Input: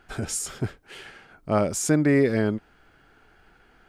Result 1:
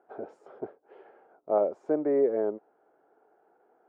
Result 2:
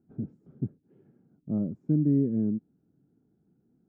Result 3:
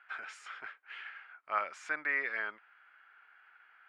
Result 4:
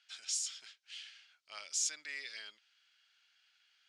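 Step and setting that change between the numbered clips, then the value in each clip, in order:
flat-topped band-pass, frequency: 570, 190, 1,700, 4,400 Hertz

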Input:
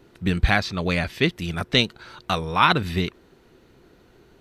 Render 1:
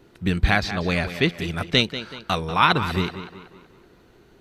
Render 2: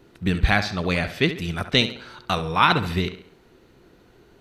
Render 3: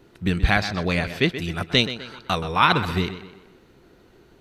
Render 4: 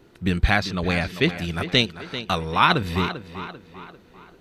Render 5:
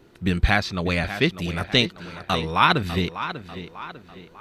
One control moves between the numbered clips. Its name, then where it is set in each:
tape delay, delay time: 190, 69, 127, 394, 596 milliseconds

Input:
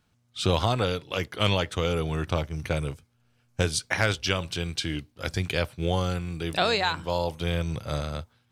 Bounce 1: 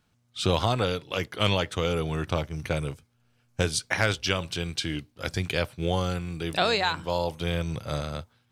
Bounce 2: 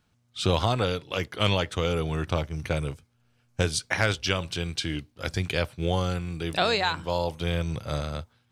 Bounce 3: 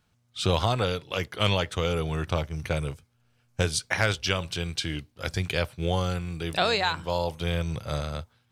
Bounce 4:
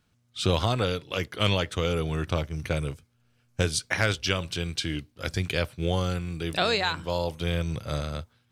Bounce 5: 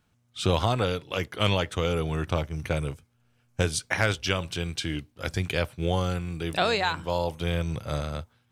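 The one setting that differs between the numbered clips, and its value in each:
parametric band, centre frequency: 71, 15,000, 280, 840, 4,500 Hertz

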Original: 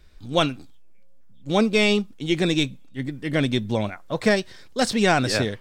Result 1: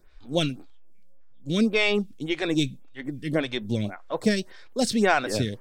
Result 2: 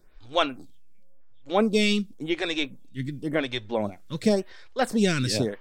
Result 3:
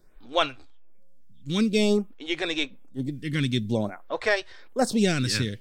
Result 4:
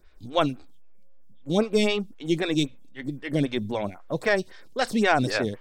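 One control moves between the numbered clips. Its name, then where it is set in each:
phaser with staggered stages, speed: 1.8, 0.92, 0.52, 3.8 Hertz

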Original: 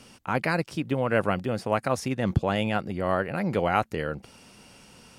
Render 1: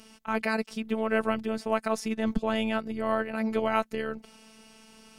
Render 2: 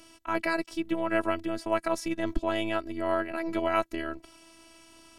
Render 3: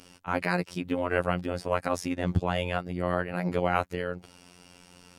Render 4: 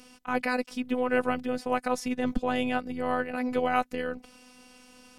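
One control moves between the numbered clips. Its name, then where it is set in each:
phases set to zero, frequency: 220, 330, 89, 250 Hertz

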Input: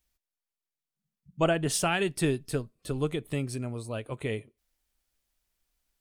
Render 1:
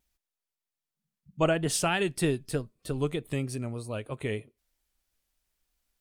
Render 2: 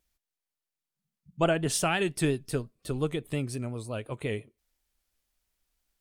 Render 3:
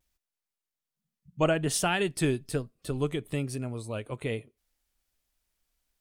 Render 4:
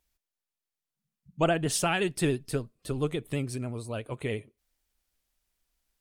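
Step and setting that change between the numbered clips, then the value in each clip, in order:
pitch vibrato, speed: 3.2, 5.7, 1.2, 14 Hertz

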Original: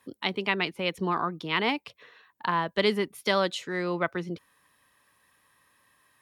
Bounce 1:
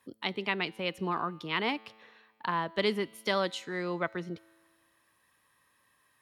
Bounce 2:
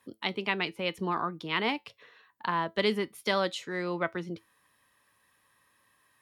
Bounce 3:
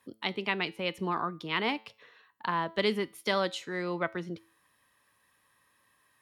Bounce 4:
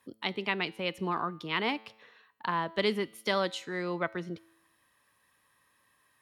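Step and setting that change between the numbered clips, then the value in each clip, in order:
tuned comb filter, decay: 1.8, 0.18, 0.42, 0.88 seconds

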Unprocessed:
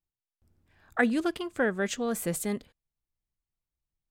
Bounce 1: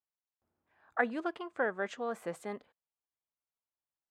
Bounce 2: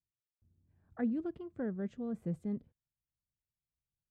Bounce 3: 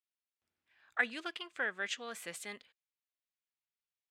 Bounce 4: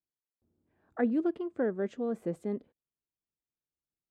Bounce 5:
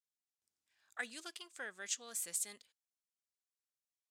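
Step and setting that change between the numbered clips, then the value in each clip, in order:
resonant band-pass, frequency: 920, 120, 2,600, 340, 6,900 Hertz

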